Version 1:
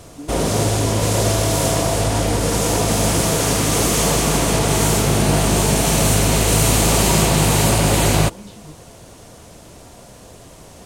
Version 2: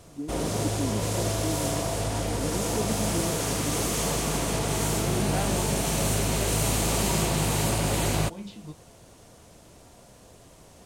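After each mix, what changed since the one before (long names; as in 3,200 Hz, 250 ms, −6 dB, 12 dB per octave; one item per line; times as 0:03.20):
background −10.0 dB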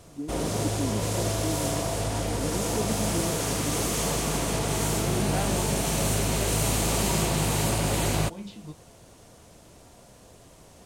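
nothing changed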